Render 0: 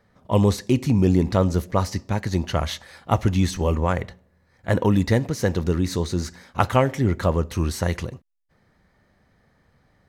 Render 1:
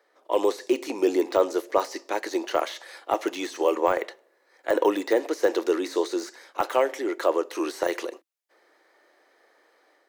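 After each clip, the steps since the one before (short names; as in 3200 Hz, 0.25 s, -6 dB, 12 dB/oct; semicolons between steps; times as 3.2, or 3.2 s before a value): AGC gain up to 5 dB; Chebyshev high-pass 320 Hz, order 5; de-esser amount 85%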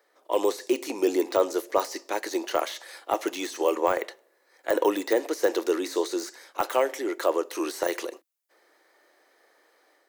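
high shelf 6900 Hz +9.5 dB; gain -1.5 dB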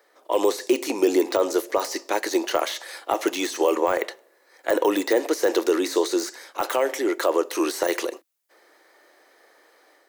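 limiter -16 dBFS, peak gain reduction 8 dB; gain +6 dB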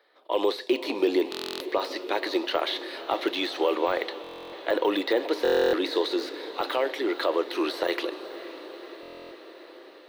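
resonant high shelf 5100 Hz -10 dB, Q 3; diffused feedback echo 0.503 s, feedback 70%, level -14 dB; stuck buffer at 1.3/4.22/5.43/9.01, samples 1024, times 12; gain -4 dB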